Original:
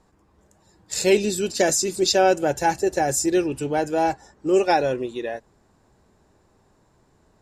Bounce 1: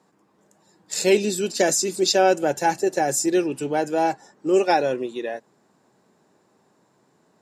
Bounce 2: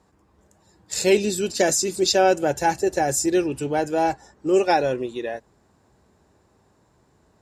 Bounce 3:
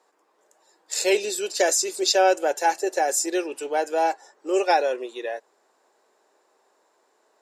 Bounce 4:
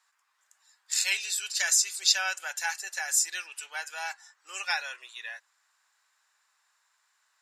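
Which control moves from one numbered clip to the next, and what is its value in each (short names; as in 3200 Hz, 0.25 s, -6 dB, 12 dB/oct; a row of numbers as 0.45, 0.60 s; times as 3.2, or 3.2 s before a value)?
HPF, cutoff: 150, 44, 410, 1300 Hz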